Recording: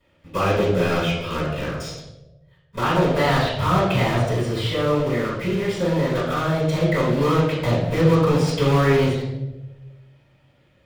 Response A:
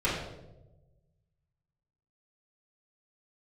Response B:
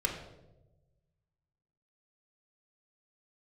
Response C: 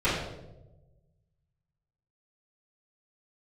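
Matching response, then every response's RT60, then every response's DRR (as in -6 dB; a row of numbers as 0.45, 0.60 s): C; 1.1, 1.1, 1.1 s; -9.5, 0.0, -14.0 dB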